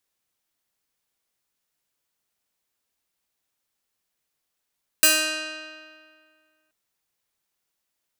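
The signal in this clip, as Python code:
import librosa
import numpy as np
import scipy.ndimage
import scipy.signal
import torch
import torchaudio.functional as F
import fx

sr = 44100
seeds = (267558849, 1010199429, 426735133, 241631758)

y = fx.pluck(sr, length_s=1.68, note=63, decay_s=2.0, pick=0.29, brightness='bright')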